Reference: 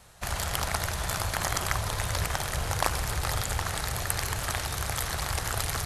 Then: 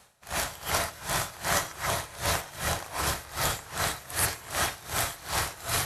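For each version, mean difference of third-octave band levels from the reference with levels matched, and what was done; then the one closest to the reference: 7.0 dB: high-pass 180 Hz 6 dB/octave; gated-style reverb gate 160 ms rising, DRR -5.5 dB; logarithmic tremolo 2.6 Hz, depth 20 dB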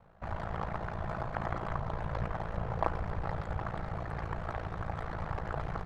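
12.0 dB: low-pass 1.1 kHz 12 dB/octave; comb 6.1 ms, depth 44%; ring modulator 28 Hz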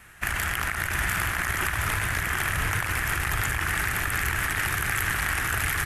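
4.5 dB: FFT filter 170 Hz 0 dB, 330 Hz +5 dB, 530 Hz -7 dB, 970 Hz -1 dB, 1.7 kHz +12 dB, 2.7 kHz +7 dB, 4.1 kHz -7 dB, 13 kHz +4 dB; compressor with a negative ratio -28 dBFS, ratio -1; on a send: delay 720 ms -4 dB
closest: third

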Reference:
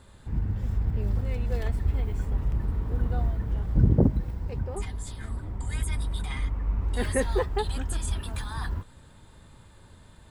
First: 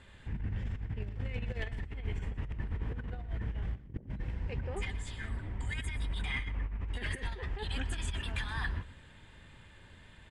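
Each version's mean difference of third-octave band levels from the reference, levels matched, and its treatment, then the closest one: 6.0 dB: low-pass 7.2 kHz 12 dB/octave; high-order bell 2.3 kHz +10 dB 1.2 oct; compressor with a negative ratio -28 dBFS, ratio -0.5; on a send: delay 123 ms -16 dB; on the sum: trim -7 dB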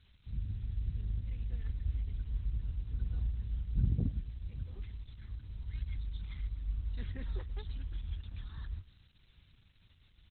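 8.0 dB: amplifier tone stack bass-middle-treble 6-0-2; added noise violet -52 dBFS; on a send: feedback delay 108 ms, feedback 49%, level -20.5 dB; on the sum: trim +3 dB; Opus 8 kbps 48 kHz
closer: first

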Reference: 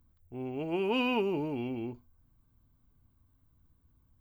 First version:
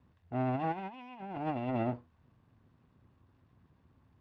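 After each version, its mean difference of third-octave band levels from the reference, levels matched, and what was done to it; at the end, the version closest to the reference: 8.5 dB: comb filter that takes the minimum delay 1.1 ms; band-pass 130–2400 Hz; compressor with a negative ratio -40 dBFS, ratio -0.5; trim +5 dB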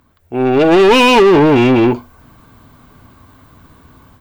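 5.5 dB: dynamic bell 2.4 kHz, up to -4 dB, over -48 dBFS, Q 2.9; level rider gain up to 12.5 dB; overdrive pedal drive 27 dB, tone 2.4 kHz, clips at -7 dBFS; trim +5.5 dB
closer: second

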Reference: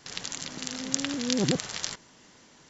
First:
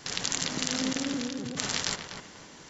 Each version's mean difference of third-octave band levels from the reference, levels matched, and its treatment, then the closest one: 6.5 dB: compressor with a negative ratio -35 dBFS, ratio -1; filtered feedback delay 246 ms, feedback 30%, low-pass 2.3 kHz, level -6 dB; trim +2.5 dB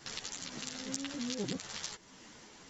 4.5 dB: compression 2.5:1, threshold -41 dBFS, peak gain reduction 14 dB; three-phase chorus; trim +4 dB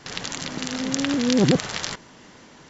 2.0 dB: treble shelf 4.7 kHz -11 dB; in parallel at -3 dB: peak limiter -19 dBFS, peak gain reduction 10.5 dB; on the sum: trim +5 dB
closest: third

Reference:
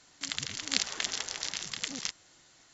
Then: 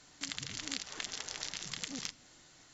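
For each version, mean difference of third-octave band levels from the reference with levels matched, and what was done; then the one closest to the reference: 4.5 dB: bass shelf 250 Hz +5.5 dB; hum notches 50/100/150 Hz; compression 6:1, threshold -35 dBFS, peak gain reduction 13.5 dB; simulated room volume 3000 m³, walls furnished, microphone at 0.44 m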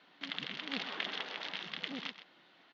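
7.5 dB: saturation -18.5 dBFS, distortion -9 dB; elliptic band-pass 180–3400 Hz, stop band 40 dB; on a send: delay 127 ms -12 dB; on the sum: trim +1 dB; Opus 96 kbps 48 kHz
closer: first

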